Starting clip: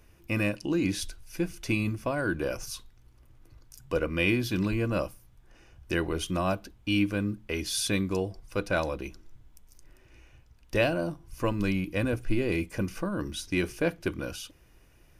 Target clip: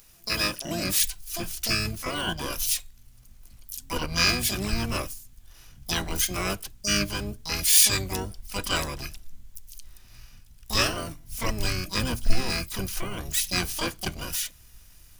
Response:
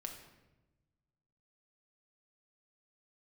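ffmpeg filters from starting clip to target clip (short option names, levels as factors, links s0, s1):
-filter_complex "[0:a]asubboost=boost=3:cutoff=130,asplit=4[s0][s1][s2][s3];[s1]asetrate=22050,aresample=44100,atempo=2,volume=0.708[s4];[s2]asetrate=29433,aresample=44100,atempo=1.49831,volume=0.708[s5];[s3]asetrate=88200,aresample=44100,atempo=0.5,volume=0.708[s6];[s0][s4][s5][s6]amix=inputs=4:normalize=0,crystalizer=i=8.5:c=0,volume=0.376"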